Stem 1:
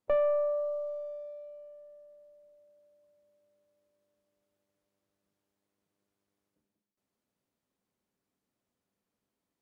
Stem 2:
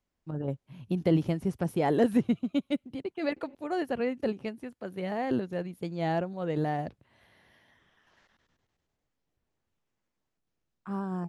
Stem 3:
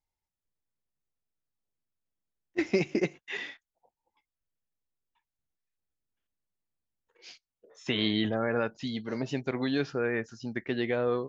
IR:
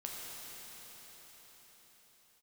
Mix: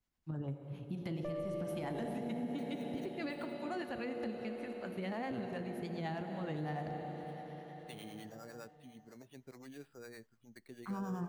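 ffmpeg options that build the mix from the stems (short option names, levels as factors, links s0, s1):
-filter_complex "[0:a]adelay=1150,volume=0.355[s0];[1:a]volume=0.794,asplit=2[s1][s2];[s2]volume=0.422[s3];[2:a]lowpass=f=3400:w=0.5412,lowpass=f=3400:w=1.3066,acrusher=samples=7:mix=1:aa=0.000001,volume=0.119[s4];[s1][s4]amix=inputs=2:normalize=0,acrossover=split=480[s5][s6];[s5]aeval=exprs='val(0)*(1-0.7/2+0.7/2*cos(2*PI*9.8*n/s))':c=same[s7];[s6]aeval=exprs='val(0)*(1-0.7/2-0.7/2*cos(2*PI*9.8*n/s))':c=same[s8];[s7][s8]amix=inputs=2:normalize=0,alimiter=level_in=1.68:limit=0.0631:level=0:latency=1:release=341,volume=0.596,volume=1[s9];[3:a]atrim=start_sample=2205[s10];[s3][s10]afir=irnorm=-1:irlink=0[s11];[s0][s9][s11]amix=inputs=3:normalize=0,alimiter=level_in=2.24:limit=0.0631:level=0:latency=1:release=117,volume=0.447"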